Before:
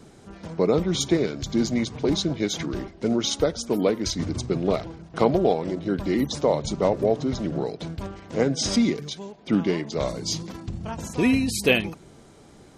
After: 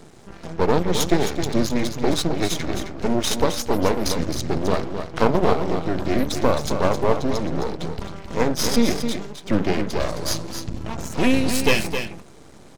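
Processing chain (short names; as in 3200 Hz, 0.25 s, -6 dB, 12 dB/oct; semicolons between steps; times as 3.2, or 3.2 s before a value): de-hum 97.52 Hz, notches 25; half-wave rectifier; on a send: echo 0.264 s -8 dB; on the sum: gain +6.5 dB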